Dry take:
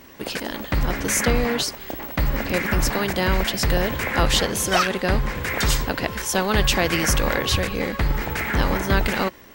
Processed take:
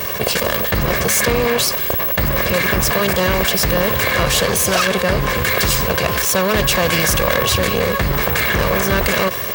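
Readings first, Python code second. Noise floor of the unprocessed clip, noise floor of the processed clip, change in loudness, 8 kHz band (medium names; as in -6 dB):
-39 dBFS, -22 dBFS, +6.5 dB, +6.5 dB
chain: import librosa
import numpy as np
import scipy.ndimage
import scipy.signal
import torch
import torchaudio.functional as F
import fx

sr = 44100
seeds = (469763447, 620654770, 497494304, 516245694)

y = fx.lower_of_two(x, sr, delay_ms=1.8)
y = scipy.signal.sosfilt(scipy.signal.butter(2, 78.0, 'highpass', fs=sr, output='sos'), y)
y = fx.high_shelf(y, sr, hz=12000.0, db=6.0)
y = fx.env_flatten(y, sr, amount_pct=70)
y = y * librosa.db_to_amplitude(3.5)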